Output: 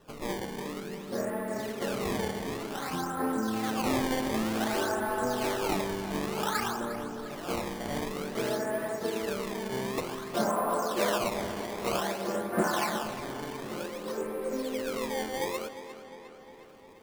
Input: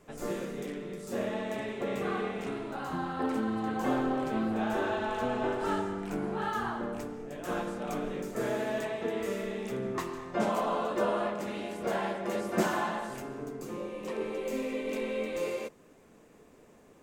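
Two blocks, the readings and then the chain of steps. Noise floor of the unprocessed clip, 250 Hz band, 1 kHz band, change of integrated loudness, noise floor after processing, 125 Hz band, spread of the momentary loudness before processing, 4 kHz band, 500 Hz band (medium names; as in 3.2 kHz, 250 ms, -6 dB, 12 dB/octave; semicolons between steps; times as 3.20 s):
-58 dBFS, +0.5 dB, +1.5 dB, +1.5 dB, -49 dBFS, +1.5 dB, 8 LU, +7.0 dB, +0.5 dB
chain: resonant high shelf 2.3 kHz -12.5 dB, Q 1.5; decimation with a swept rate 19×, swing 160% 0.54 Hz; on a send: tape echo 355 ms, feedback 66%, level -11.5 dB, low-pass 5.8 kHz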